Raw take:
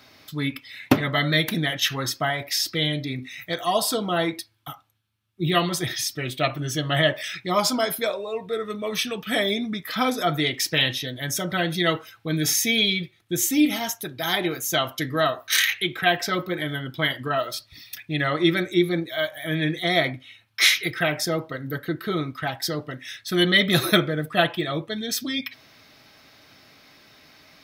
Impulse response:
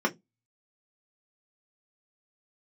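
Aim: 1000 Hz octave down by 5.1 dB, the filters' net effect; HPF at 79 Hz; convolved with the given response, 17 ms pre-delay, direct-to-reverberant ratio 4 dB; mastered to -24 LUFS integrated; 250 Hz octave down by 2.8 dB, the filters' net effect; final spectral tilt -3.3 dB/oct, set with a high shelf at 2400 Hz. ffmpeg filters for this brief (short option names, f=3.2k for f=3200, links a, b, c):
-filter_complex "[0:a]highpass=79,equalizer=f=250:t=o:g=-3.5,equalizer=f=1k:t=o:g=-9,highshelf=f=2.4k:g=4,asplit=2[a][b];[1:a]atrim=start_sample=2205,adelay=17[c];[b][c]afir=irnorm=-1:irlink=0,volume=-15.5dB[d];[a][d]amix=inputs=2:normalize=0,volume=-1.5dB"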